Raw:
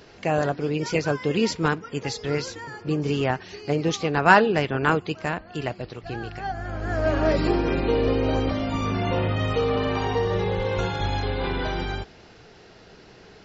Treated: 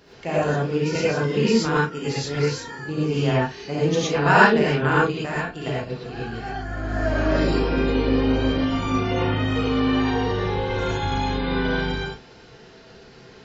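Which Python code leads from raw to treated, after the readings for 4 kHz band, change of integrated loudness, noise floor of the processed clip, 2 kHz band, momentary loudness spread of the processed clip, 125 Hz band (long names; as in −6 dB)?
+2.5 dB, +2.0 dB, −47 dBFS, +3.0 dB, 10 LU, +2.5 dB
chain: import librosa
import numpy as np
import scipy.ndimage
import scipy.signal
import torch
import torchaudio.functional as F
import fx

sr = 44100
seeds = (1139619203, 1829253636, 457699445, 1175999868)

y = fx.doubler(x, sr, ms=35.0, db=-9.5)
y = fx.rev_gated(y, sr, seeds[0], gate_ms=140, shape='rising', drr_db=-7.0)
y = y * librosa.db_to_amplitude(-6.0)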